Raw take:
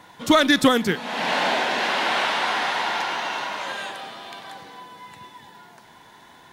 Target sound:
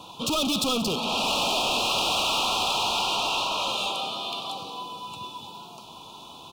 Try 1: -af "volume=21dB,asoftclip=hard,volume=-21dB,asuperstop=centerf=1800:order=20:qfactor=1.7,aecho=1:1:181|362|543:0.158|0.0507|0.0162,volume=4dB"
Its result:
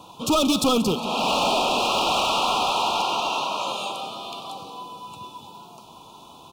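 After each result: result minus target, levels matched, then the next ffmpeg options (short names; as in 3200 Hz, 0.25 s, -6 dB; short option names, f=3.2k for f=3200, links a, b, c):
4000 Hz band -3.5 dB; overloaded stage: distortion -4 dB
-af "volume=21dB,asoftclip=hard,volume=-21dB,asuperstop=centerf=1800:order=20:qfactor=1.7,equalizer=f=3.5k:t=o:w=1.3:g=6,aecho=1:1:181|362|543:0.158|0.0507|0.0162,volume=4dB"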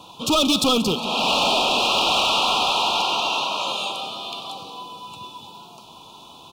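overloaded stage: distortion -4 dB
-af "volume=29dB,asoftclip=hard,volume=-29dB,asuperstop=centerf=1800:order=20:qfactor=1.7,equalizer=f=3.5k:t=o:w=1.3:g=6,aecho=1:1:181|362|543:0.158|0.0507|0.0162,volume=4dB"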